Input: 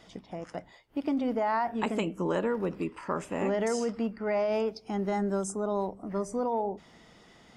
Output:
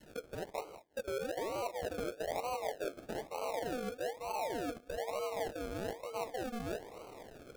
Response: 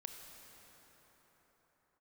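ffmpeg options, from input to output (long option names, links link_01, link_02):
-af "afreqshift=270,areverse,acompressor=threshold=-43dB:ratio=6,areverse,acrusher=samples=36:mix=1:aa=0.000001:lfo=1:lforange=21.6:lforate=1.1,adynamicequalizer=threshold=0.00178:dfrequency=610:dqfactor=0.73:tfrequency=610:tqfactor=0.73:attack=5:release=100:ratio=0.375:range=3:mode=boostabove:tftype=bell,volume=2dB"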